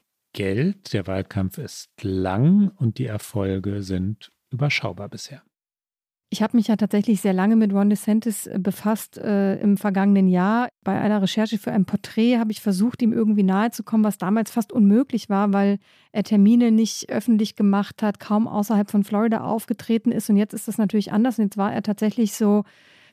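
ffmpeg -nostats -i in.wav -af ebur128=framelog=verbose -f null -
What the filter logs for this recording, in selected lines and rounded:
Integrated loudness:
  I:         -21.3 LUFS
  Threshold: -31.6 LUFS
Loudness range:
  LRA:         4.1 LU
  Threshold: -41.5 LUFS
  LRA low:   -23.9 LUFS
  LRA high:  -19.8 LUFS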